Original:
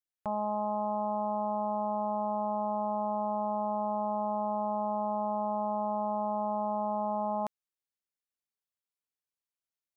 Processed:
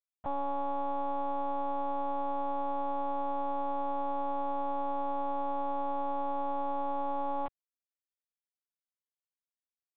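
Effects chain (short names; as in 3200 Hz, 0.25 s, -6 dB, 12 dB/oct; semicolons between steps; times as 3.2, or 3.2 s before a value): crossover distortion -52 dBFS; monotone LPC vocoder at 8 kHz 280 Hz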